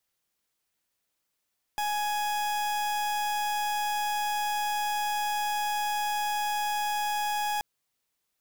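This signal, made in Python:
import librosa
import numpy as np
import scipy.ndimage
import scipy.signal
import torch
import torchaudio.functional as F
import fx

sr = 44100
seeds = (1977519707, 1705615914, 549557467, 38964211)

y = fx.pulse(sr, length_s=5.83, hz=835.0, level_db=-29.0, duty_pct=40)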